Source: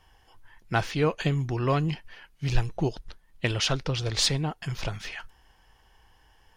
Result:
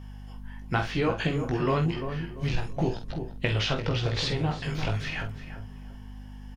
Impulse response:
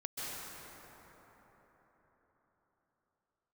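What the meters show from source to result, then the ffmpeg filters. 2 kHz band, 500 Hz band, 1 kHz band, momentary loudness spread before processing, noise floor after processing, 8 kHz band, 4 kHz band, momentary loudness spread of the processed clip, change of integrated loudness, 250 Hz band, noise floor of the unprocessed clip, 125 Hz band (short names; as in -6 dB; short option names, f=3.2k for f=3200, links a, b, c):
+1.0 dB, +0.5 dB, 0.0 dB, 11 LU, -42 dBFS, -11.5 dB, -3.0 dB, 18 LU, -1.0 dB, +1.5 dB, -61 dBFS, 0.0 dB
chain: -filter_complex "[0:a]flanger=delay=16.5:depth=3.4:speed=0.95,acompressor=threshold=-30dB:ratio=3,asplit=2[a][b];[b]adelay=47,volume=-9dB[c];[a][c]amix=inputs=2:normalize=0,aeval=exprs='val(0)+0.00447*(sin(2*PI*50*n/s)+sin(2*PI*2*50*n/s)/2+sin(2*PI*3*50*n/s)/3+sin(2*PI*4*50*n/s)/4+sin(2*PI*5*50*n/s)/5)':c=same,asplit=2[d][e];[e]adelay=344,lowpass=f=1k:p=1,volume=-7.5dB,asplit=2[f][g];[g]adelay=344,lowpass=f=1k:p=1,volume=0.4,asplit=2[h][i];[i]adelay=344,lowpass=f=1k:p=1,volume=0.4,asplit=2[j][k];[k]adelay=344,lowpass=f=1k:p=1,volume=0.4,asplit=2[l][m];[m]adelay=344,lowpass=f=1k:p=1,volume=0.4[n];[f][h][j][l][n]amix=inputs=5:normalize=0[o];[d][o]amix=inputs=2:normalize=0,acrossover=split=4300[p][q];[q]acompressor=threshold=-58dB:ratio=4:attack=1:release=60[r];[p][r]amix=inputs=2:normalize=0,volume=6.5dB"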